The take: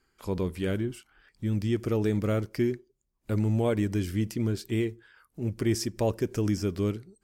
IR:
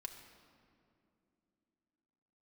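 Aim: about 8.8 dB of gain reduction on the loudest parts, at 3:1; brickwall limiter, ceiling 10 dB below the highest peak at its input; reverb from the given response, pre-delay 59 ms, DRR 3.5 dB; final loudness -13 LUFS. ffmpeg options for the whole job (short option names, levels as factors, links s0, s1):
-filter_complex "[0:a]acompressor=threshold=0.02:ratio=3,alimiter=level_in=2.11:limit=0.0631:level=0:latency=1,volume=0.473,asplit=2[s0][s1];[1:a]atrim=start_sample=2205,adelay=59[s2];[s1][s2]afir=irnorm=-1:irlink=0,volume=1[s3];[s0][s3]amix=inputs=2:normalize=0,volume=20"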